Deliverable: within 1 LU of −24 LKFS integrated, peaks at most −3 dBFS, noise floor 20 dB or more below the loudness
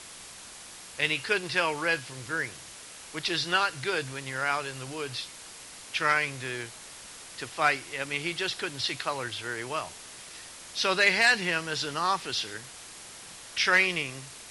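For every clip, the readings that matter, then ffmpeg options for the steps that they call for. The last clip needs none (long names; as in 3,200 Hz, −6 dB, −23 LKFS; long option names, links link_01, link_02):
background noise floor −46 dBFS; target noise floor −48 dBFS; integrated loudness −28.0 LKFS; sample peak −10.5 dBFS; target loudness −24.0 LKFS
→ -af "afftdn=noise_reduction=6:noise_floor=-46"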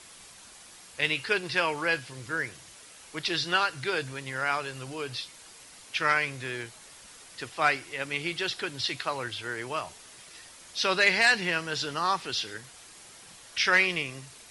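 background noise floor −51 dBFS; integrated loudness −28.0 LKFS; sample peak −10.5 dBFS; target loudness −24.0 LKFS
→ -af "volume=4dB"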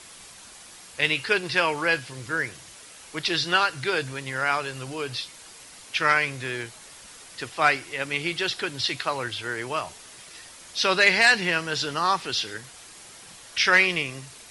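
integrated loudness −24.0 LKFS; sample peak −6.5 dBFS; background noise floor −47 dBFS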